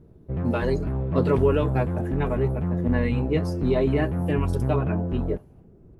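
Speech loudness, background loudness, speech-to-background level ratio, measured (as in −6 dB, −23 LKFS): −27.0 LKFS, −27.5 LKFS, 0.5 dB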